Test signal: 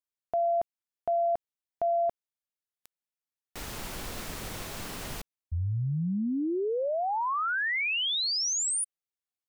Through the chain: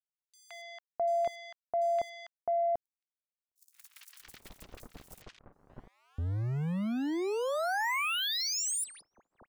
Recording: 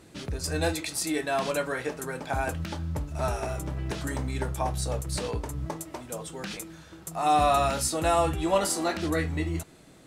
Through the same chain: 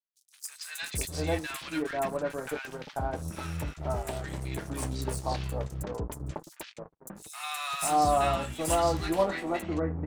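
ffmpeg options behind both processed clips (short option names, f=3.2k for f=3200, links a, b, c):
-filter_complex "[0:a]aeval=exprs='sgn(val(0))*max(abs(val(0))-0.0119,0)':c=same,agate=range=-33dB:threshold=-41dB:ratio=3:release=33:detection=rms,acrossover=split=1300|5700[a][b][c];[b]adelay=170[d];[a]adelay=660[e];[e][d][c]amix=inputs=3:normalize=0"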